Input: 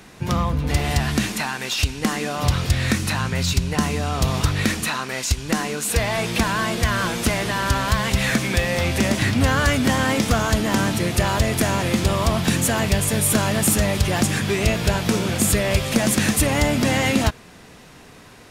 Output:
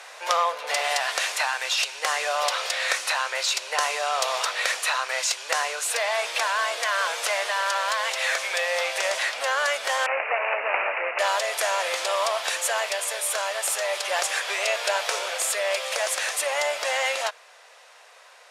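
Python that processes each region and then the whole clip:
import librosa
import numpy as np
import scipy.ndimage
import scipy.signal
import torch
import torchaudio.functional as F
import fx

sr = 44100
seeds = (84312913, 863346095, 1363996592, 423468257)

y = fx.chain(x, sr, fx.lower_of_two(delay_ms=0.34),
    fx.resample_bad(factor=8, down='none', up='filtered'), at=(10.06, 11.19))
y = scipy.signal.sosfilt(scipy.signal.ellip(4, 1.0, 60, 540.0, 'highpass', fs=sr, output='sos'), y)
y = fx.rider(y, sr, range_db=10, speed_s=0.5)
y = scipy.signal.sosfilt(scipy.signal.butter(2, 10000.0, 'lowpass', fs=sr, output='sos'), y)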